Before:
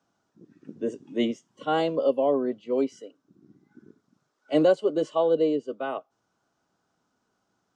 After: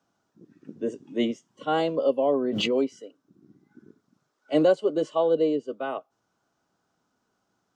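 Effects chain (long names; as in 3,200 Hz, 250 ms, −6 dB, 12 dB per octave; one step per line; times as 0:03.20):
0:02.33–0:02.92: background raised ahead of every attack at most 23 dB per second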